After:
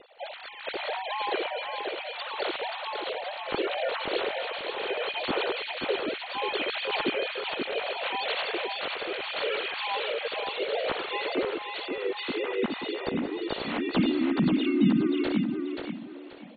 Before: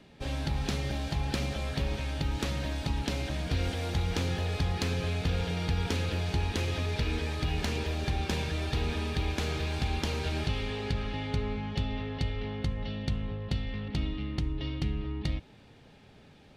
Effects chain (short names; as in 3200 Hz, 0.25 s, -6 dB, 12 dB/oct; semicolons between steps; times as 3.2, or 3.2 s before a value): sine-wave speech; notch 1700 Hz, Q 18; rotary speaker horn 0.7 Hz, later 6.3 Hz, at 13.97; harmoniser +4 st -2 dB; feedback echo 0.531 s, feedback 28%, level -5 dB